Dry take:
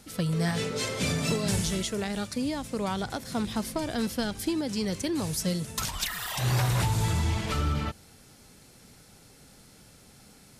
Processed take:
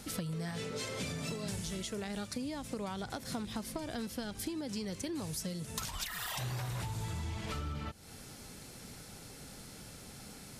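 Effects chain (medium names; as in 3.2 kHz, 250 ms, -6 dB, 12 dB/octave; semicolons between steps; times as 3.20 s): compression 10:1, threshold -40 dBFS, peak gain reduction 17.5 dB; trim +4 dB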